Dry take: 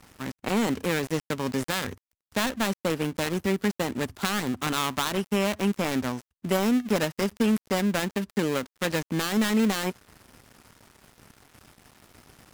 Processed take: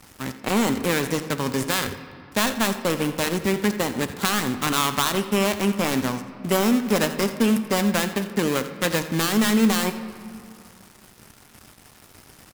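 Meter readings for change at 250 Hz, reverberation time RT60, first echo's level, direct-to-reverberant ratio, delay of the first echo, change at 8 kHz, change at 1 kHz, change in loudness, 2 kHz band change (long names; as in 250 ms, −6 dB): +3.5 dB, 2.4 s, −15.5 dB, 9.0 dB, 85 ms, +7.0 dB, +5.0 dB, +4.5 dB, +4.5 dB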